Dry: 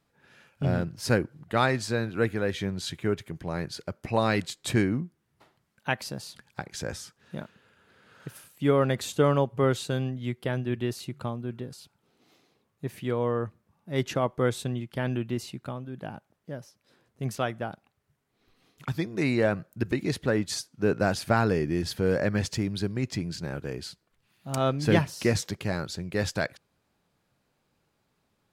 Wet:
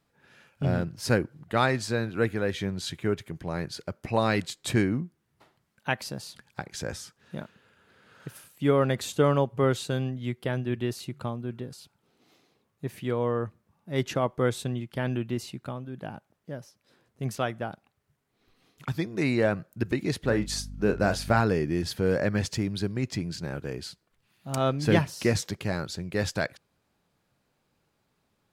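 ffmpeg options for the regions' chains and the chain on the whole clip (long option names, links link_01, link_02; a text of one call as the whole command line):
ffmpeg -i in.wav -filter_complex "[0:a]asettb=1/sr,asplit=3[link_01][link_02][link_03];[link_01]atrim=end=20.244[link_04];[link_02]atrim=start=20.24:end=21.41,asetpts=PTS-STARTPTS,afade=type=in:duration=0.004:curve=qsin,afade=type=out:start_time=1.166:duration=0.004:curve=qsin,asplit=2[link_05][link_06];[link_06]adelay=34,volume=-10dB[link_07];[link_05][link_07]amix=inputs=2:normalize=0,atrim=end_sample=51597,aeval=exprs='val(0)+0.0126*(sin(2*PI*50*n/s)+sin(2*PI*2*50*n/s)/2+sin(2*PI*3*50*n/s)/3+sin(2*PI*4*50*n/s)/4+sin(2*PI*5*50*n/s)/5)':channel_layout=same[link_08];[link_03]atrim=start=21.406[link_09];[link_04][link_08]acrossfade=duration=0.004:curve1=hsin:curve2=qsin[link_10];[link_10][link_09]acrossfade=duration=0.004:curve1=qsin:curve2=hsin" out.wav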